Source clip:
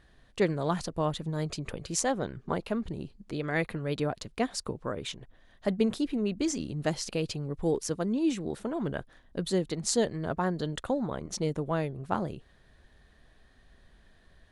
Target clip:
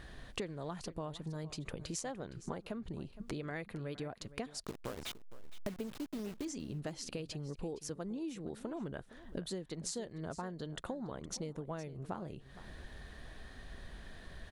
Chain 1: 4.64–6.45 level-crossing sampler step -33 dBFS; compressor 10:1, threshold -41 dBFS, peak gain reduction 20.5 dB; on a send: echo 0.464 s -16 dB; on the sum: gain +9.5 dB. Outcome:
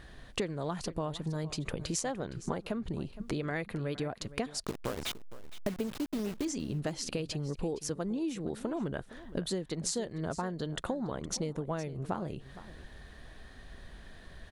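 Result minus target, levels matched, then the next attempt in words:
compressor: peak gain reduction -7 dB
4.64–6.45 level-crossing sampler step -33 dBFS; compressor 10:1, threshold -48.5 dBFS, peak gain reduction 27 dB; on a send: echo 0.464 s -16 dB; on the sum: gain +9.5 dB

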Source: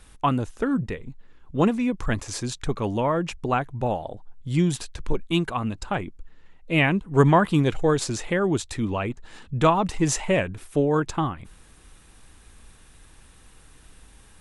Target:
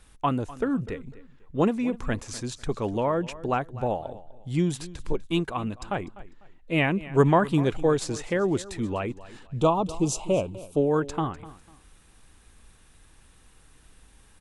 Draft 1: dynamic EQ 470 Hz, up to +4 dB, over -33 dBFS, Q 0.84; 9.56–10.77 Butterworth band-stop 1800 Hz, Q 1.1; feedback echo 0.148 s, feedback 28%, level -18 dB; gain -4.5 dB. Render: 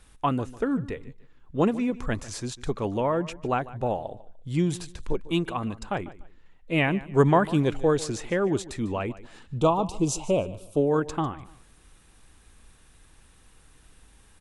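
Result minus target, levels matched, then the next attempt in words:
echo 0.101 s early
dynamic EQ 470 Hz, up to +4 dB, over -33 dBFS, Q 0.84; 9.56–10.77 Butterworth band-stop 1800 Hz, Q 1.1; feedback echo 0.249 s, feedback 28%, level -18 dB; gain -4.5 dB

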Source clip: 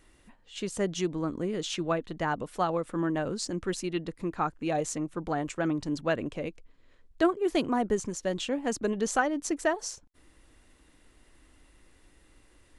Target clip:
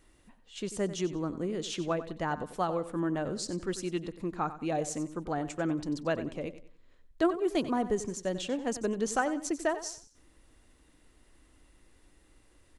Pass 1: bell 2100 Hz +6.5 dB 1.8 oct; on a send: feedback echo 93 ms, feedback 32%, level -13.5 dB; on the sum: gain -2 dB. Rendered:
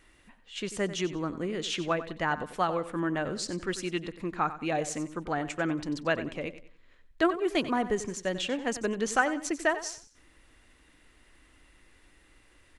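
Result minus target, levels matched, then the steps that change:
2000 Hz band +6.0 dB
change: bell 2100 Hz -2.5 dB 1.8 oct

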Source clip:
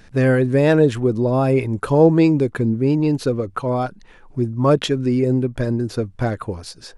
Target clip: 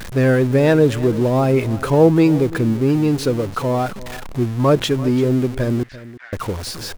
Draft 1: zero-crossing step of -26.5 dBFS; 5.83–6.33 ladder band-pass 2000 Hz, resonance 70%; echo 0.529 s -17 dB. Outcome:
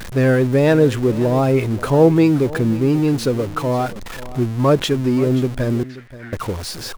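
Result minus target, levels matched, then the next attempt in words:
echo 0.187 s late
zero-crossing step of -26.5 dBFS; 5.83–6.33 ladder band-pass 2000 Hz, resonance 70%; echo 0.342 s -17 dB

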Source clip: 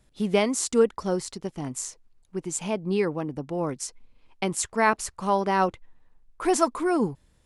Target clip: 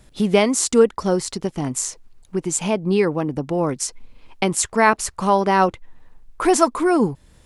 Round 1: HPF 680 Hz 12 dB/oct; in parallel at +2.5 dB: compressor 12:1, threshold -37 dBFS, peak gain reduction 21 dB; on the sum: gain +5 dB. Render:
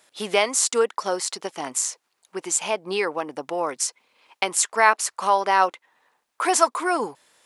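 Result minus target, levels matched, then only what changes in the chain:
500 Hz band -3.0 dB
remove: HPF 680 Hz 12 dB/oct

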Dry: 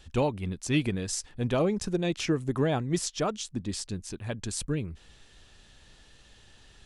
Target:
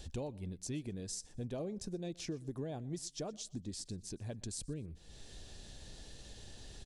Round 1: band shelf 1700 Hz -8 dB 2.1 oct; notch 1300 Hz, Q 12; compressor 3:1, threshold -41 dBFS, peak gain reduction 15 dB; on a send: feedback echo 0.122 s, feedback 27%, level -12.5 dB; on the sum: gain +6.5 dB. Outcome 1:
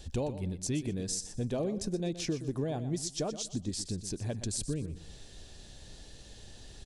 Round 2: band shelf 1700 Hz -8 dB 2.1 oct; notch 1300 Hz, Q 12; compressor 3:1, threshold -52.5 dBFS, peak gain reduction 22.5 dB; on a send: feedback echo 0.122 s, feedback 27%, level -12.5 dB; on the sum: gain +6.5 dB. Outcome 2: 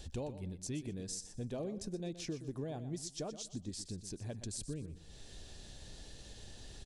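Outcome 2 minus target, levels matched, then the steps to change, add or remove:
echo-to-direct +10.5 dB
change: feedback echo 0.122 s, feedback 27%, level -23 dB

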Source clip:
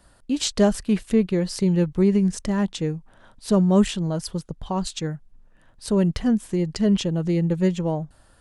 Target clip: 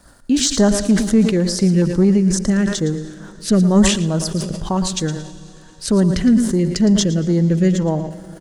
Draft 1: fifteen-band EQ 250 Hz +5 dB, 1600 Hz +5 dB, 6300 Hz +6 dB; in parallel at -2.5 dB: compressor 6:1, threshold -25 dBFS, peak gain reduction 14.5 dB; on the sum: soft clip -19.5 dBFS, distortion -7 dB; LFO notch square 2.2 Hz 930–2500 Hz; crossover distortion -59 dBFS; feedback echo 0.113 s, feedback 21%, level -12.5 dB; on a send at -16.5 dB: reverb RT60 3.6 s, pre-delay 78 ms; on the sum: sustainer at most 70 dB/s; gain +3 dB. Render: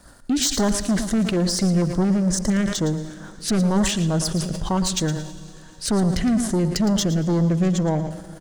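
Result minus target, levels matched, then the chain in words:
soft clip: distortion +13 dB; compressor: peak gain reduction -6 dB
fifteen-band EQ 250 Hz +5 dB, 1600 Hz +5 dB, 6300 Hz +6 dB; in parallel at -2.5 dB: compressor 6:1, threshold -32 dBFS, peak gain reduction 20.5 dB; on the sum: soft clip -7.5 dBFS, distortion -21 dB; LFO notch square 2.2 Hz 930–2500 Hz; crossover distortion -59 dBFS; feedback echo 0.113 s, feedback 21%, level -12.5 dB; on a send at -16.5 dB: reverb RT60 3.6 s, pre-delay 78 ms; on the sum: sustainer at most 70 dB/s; gain +3 dB

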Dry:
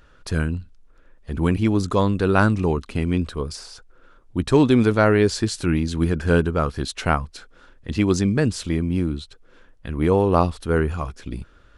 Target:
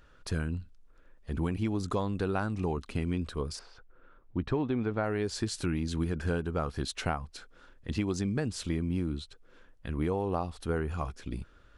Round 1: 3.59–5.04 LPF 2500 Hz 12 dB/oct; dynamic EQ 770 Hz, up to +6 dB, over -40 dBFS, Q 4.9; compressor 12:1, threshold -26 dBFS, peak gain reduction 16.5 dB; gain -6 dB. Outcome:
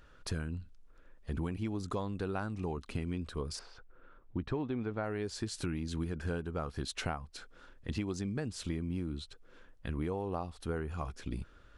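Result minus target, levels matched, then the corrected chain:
compressor: peak gain reduction +5.5 dB
3.59–5.04 LPF 2500 Hz 12 dB/oct; dynamic EQ 770 Hz, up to +6 dB, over -40 dBFS, Q 4.9; compressor 12:1, threshold -20 dBFS, peak gain reduction 11 dB; gain -6 dB

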